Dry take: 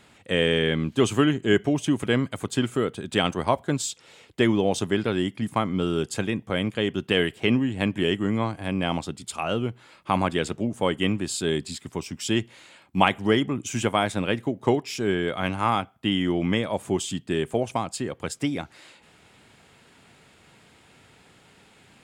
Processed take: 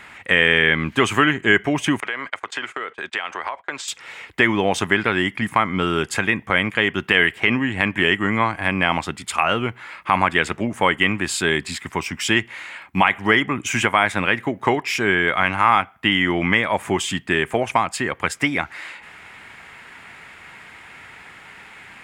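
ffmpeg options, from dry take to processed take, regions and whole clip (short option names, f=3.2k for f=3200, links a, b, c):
-filter_complex "[0:a]asettb=1/sr,asplit=3[a][b][c];[a]atrim=end=2.004[d];[b]atrim=start=2:end=3.88,asetpts=PTS-STARTPTS,afade=t=in:d=0.004:c=qsin,afade=t=out:st=1.876:d=0.004:c=qsin,agate=range=-22dB:threshold=-39dB:ratio=16:release=100:detection=peak,acrossover=split=380 7200:gain=0.1 1 0.0794[e][f][g];[e][f][g]amix=inputs=3:normalize=0,acompressor=threshold=-34dB:ratio=16:attack=3.2:release=140:knee=1:detection=peak[h];[c]atrim=start=3.876[i];[d][h]acrossfade=d=0.004:c1=hsin:c2=qsin[j];[j][i]acrossfade=d=0.004:c1=qsin:c2=hsin,equalizer=f=125:t=o:w=1:g=-5,equalizer=f=250:t=o:w=1:g=-3,equalizer=f=500:t=o:w=1:g=-4,equalizer=f=1k:t=o:w=1:g=5,equalizer=f=2k:t=o:w=1:g=12,equalizer=f=4k:t=o:w=1:g=-4,equalizer=f=8k:t=o:w=1:g=-3,acompressor=threshold=-26dB:ratio=1.5,alimiter=level_in=9dB:limit=-1dB:release=50:level=0:latency=1,volume=-1dB"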